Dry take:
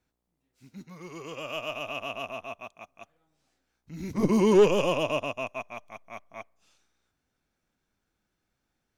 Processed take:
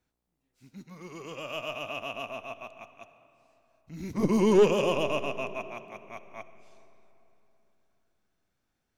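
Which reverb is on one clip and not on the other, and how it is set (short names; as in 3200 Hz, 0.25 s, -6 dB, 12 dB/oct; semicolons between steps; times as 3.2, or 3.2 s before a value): digital reverb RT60 3.3 s, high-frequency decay 0.6×, pre-delay 25 ms, DRR 12.5 dB; gain -1.5 dB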